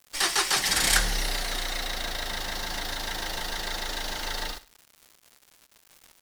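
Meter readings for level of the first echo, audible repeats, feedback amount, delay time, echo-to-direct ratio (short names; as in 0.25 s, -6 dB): -17.0 dB, 2, 31%, 63 ms, -16.5 dB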